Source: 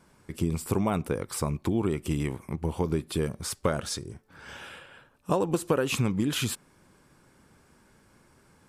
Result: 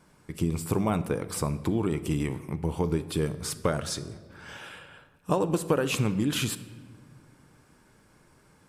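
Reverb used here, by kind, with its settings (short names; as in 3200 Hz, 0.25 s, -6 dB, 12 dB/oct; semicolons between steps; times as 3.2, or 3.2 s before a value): shoebox room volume 1500 m³, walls mixed, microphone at 0.47 m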